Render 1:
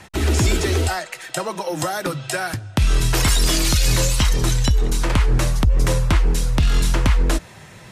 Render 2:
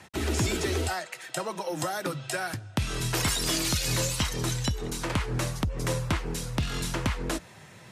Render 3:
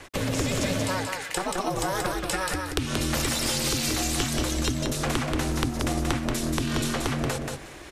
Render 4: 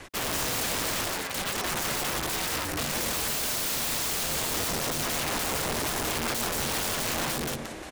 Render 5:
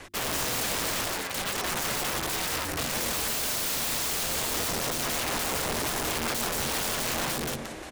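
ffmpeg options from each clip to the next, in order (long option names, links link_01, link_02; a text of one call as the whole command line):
ffmpeg -i in.wav -af "highpass=90,volume=-7dB" out.wav
ffmpeg -i in.wav -af "acompressor=threshold=-30dB:ratio=6,aeval=exprs='val(0)*sin(2*PI*190*n/s)':channel_layout=same,aecho=1:1:181|362|543:0.631|0.101|0.0162,volume=8.5dB" out.wav
ffmpeg -i in.wav -filter_complex "[0:a]equalizer=frequency=180:width_type=o:width=0.54:gain=2.5,asplit=7[link_01][link_02][link_03][link_04][link_05][link_06][link_07];[link_02]adelay=176,afreqshift=86,volume=-10dB[link_08];[link_03]adelay=352,afreqshift=172,volume=-15.8dB[link_09];[link_04]adelay=528,afreqshift=258,volume=-21.7dB[link_10];[link_05]adelay=704,afreqshift=344,volume=-27.5dB[link_11];[link_06]adelay=880,afreqshift=430,volume=-33.4dB[link_12];[link_07]adelay=1056,afreqshift=516,volume=-39.2dB[link_13];[link_01][link_08][link_09][link_10][link_11][link_12][link_13]amix=inputs=7:normalize=0,aeval=exprs='(mod(15.8*val(0)+1,2)-1)/15.8':channel_layout=same" out.wav
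ffmpeg -i in.wav -af "bandreject=frequency=50:width_type=h:width=6,bandreject=frequency=100:width_type=h:width=6,bandreject=frequency=150:width_type=h:width=6,bandreject=frequency=200:width_type=h:width=6,bandreject=frequency=250:width_type=h:width=6,bandreject=frequency=300:width_type=h:width=6,bandreject=frequency=350:width_type=h:width=6" out.wav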